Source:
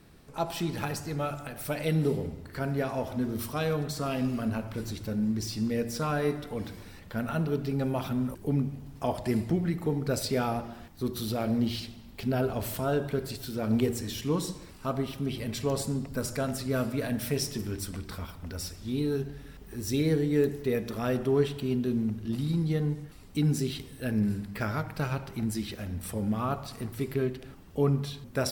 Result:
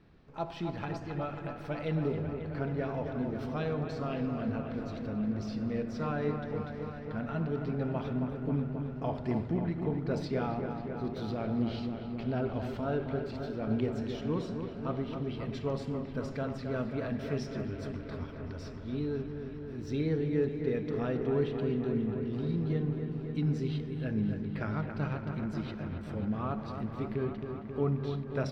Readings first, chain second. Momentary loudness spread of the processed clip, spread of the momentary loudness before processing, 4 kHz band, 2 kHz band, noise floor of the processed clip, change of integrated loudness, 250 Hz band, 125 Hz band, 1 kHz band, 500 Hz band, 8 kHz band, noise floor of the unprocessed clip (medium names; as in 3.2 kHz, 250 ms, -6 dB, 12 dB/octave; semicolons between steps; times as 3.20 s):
7 LU, 10 LU, -11.0 dB, -5.0 dB, -42 dBFS, -3.5 dB, -3.0 dB, -3.0 dB, -4.0 dB, -3.0 dB, under -20 dB, -48 dBFS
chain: distance through air 220 m; on a send: feedback echo behind a low-pass 269 ms, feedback 78%, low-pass 2.6 kHz, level -7 dB; on the sum: trim -4.5 dB